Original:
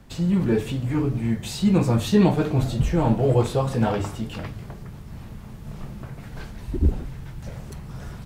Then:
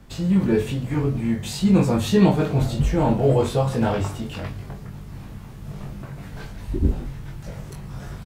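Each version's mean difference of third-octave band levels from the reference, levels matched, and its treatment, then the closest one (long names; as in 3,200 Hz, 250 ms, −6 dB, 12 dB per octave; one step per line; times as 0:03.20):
1.0 dB: double-tracking delay 21 ms −3.5 dB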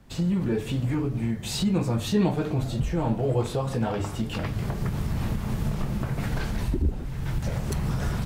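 6.0 dB: camcorder AGC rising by 35 dB per second
level −5.5 dB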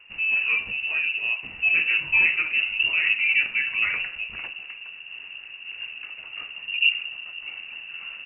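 16.5 dB: voice inversion scrambler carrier 2,800 Hz
level −3 dB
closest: first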